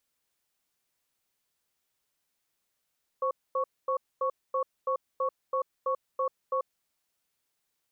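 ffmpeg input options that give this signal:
-f lavfi -i "aevalsrc='0.0398*(sin(2*PI*524*t)+sin(2*PI*1110*t))*clip(min(mod(t,0.33),0.09-mod(t,0.33))/0.005,0,1)':d=3.61:s=44100"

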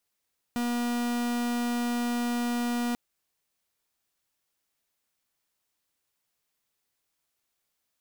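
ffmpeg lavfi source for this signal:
-f lavfi -i "aevalsrc='0.0376*(2*lt(mod(240*t,1),0.44)-1)':d=2.39:s=44100"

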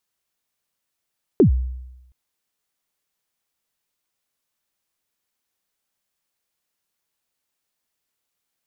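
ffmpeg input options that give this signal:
-f lavfi -i "aevalsrc='0.422*pow(10,-3*t/0.96)*sin(2*PI*(450*0.106/log(63/450)*(exp(log(63/450)*min(t,0.106)/0.106)-1)+63*max(t-0.106,0)))':d=0.72:s=44100"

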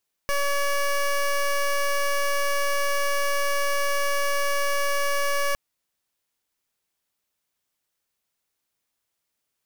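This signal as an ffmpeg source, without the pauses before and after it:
-f lavfi -i "aevalsrc='0.0708*(2*lt(mod(567*t,1),0.15)-1)':d=5.26:s=44100"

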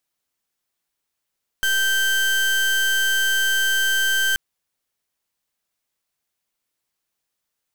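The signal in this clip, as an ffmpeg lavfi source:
-f lavfi -i "aevalsrc='0.106*(2*lt(mod(1560*t,1),0.31)-1)':d=2.73:s=44100"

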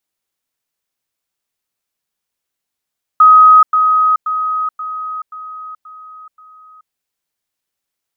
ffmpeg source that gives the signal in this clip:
-f lavfi -i "aevalsrc='pow(10,(-2.5-6*floor(t/0.53))/20)*sin(2*PI*1260*t)*clip(min(mod(t,0.53),0.43-mod(t,0.53))/0.005,0,1)':d=3.71:s=44100"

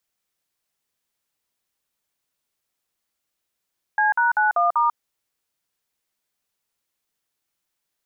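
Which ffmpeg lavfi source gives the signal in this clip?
-f lavfi -i "aevalsrc='0.119*clip(min(mod(t,0.194),0.143-mod(t,0.194))/0.002,0,1)*(eq(floor(t/0.194),0)*(sin(2*PI*852*mod(t,0.194))+sin(2*PI*1633*mod(t,0.194)))+eq(floor(t/0.194),1)*(sin(2*PI*941*mod(t,0.194))+sin(2*PI*1477*mod(t,0.194)))+eq(floor(t/0.194),2)*(sin(2*PI*852*mod(t,0.194))+sin(2*PI*1477*mod(t,0.194)))+eq(floor(t/0.194),3)*(sin(2*PI*697*mod(t,0.194))+sin(2*PI*1209*mod(t,0.194)))+eq(floor(t/0.194),4)*(sin(2*PI*941*mod(t,0.194))+sin(2*PI*1209*mod(t,0.194))))':d=0.97:s=44100"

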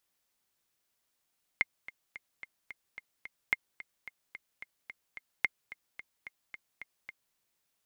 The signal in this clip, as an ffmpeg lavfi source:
-f lavfi -i "aevalsrc='pow(10,(-12.5-17.5*gte(mod(t,7*60/219),60/219))/20)*sin(2*PI*2120*mod(t,60/219))*exp(-6.91*mod(t,60/219)/0.03)':d=5.75:s=44100"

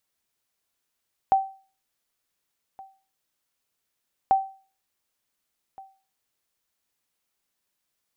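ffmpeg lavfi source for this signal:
-f lavfi -i "aevalsrc='0.251*(sin(2*PI*774*mod(t,2.99))*exp(-6.91*mod(t,2.99)/0.38)+0.0631*sin(2*PI*774*max(mod(t,2.99)-1.47,0))*exp(-6.91*max(mod(t,2.99)-1.47,0)/0.38))':d=5.98:s=44100"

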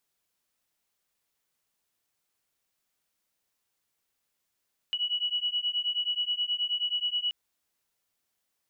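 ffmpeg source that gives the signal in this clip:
-f lavfi -i "aevalsrc='0.0316*(sin(2*PI*2930*t)+sin(2*PI*2939.4*t))':d=2.38:s=44100"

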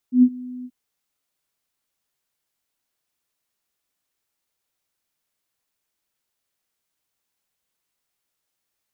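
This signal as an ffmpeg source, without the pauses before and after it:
-f lavfi -i "aevalsrc='0.422*sin(2*PI*250*t)':d=0.582:s=44100,afade=t=in:d=0.107,afade=t=out:st=0.107:d=0.06:silence=0.0708,afade=t=out:st=0.53:d=0.052"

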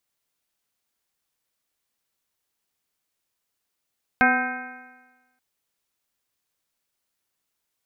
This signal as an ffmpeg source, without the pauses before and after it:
-f lavfi -i "aevalsrc='0.0891*pow(10,-3*t/1.21)*sin(2*PI*249.34*t)+0.0355*pow(10,-3*t/1.21)*sin(2*PI*500.68*t)+0.119*pow(10,-3*t/1.21)*sin(2*PI*756.02*t)+0.0355*pow(10,-3*t/1.21)*sin(2*PI*1017.29*t)+0.0531*pow(10,-3*t/1.21)*sin(2*PI*1286.33*t)+0.168*pow(10,-3*t/1.21)*sin(2*PI*1564.92*t)+0.0251*pow(10,-3*t/1.21)*sin(2*PI*1854.72*t)+0.0631*pow(10,-3*t/1.21)*sin(2*PI*2157.25*t)+0.0335*pow(10,-3*t/1.21)*sin(2*PI*2473.95*t)':d=1.18:s=44100"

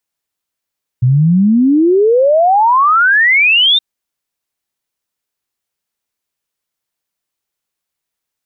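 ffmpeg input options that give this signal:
-f lavfi -i "aevalsrc='0.473*clip(min(t,2.77-t)/0.01,0,1)*sin(2*PI*120*2.77/log(3700/120)*(exp(log(3700/120)*t/2.77)-1))':d=2.77:s=44100"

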